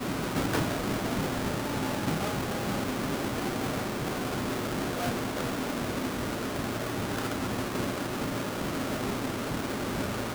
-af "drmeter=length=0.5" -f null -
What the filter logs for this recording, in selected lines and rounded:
Channel 1: DR: 5.6
Overall DR: 5.6